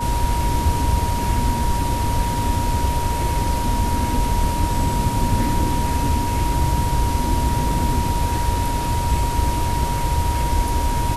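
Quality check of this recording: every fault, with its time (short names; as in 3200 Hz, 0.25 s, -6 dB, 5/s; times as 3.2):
tone 950 Hz -24 dBFS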